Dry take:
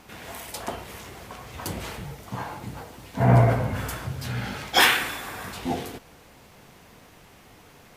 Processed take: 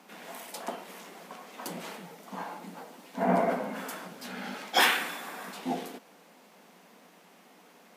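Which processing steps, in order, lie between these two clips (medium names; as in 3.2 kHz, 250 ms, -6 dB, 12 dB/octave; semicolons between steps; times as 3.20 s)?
rippled Chebyshev high-pass 170 Hz, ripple 3 dB; trim -3 dB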